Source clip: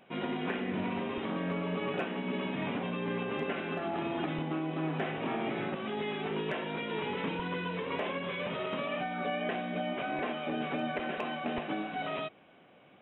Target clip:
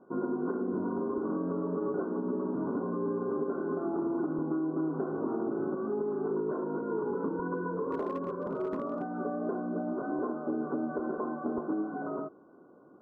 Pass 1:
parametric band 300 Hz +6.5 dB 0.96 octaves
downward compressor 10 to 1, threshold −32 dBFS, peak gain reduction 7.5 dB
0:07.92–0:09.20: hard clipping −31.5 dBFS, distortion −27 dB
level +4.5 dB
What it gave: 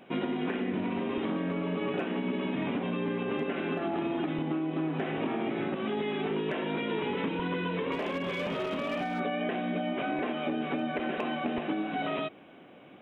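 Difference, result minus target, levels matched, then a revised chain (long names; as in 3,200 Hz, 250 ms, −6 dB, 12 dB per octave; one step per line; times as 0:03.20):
2,000 Hz band +10.0 dB
Chebyshev low-pass with heavy ripple 1,500 Hz, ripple 9 dB
parametric band 300 Hz +6.5 dB 0.96 octaves
downward compressor 10 to 1, threshold −32 dBFS, peak gain reduction 5.5 dB
0:07.92–0:09.20: hard clipping −31.5 dBFS, distortion −33 dB
level +4.5 dB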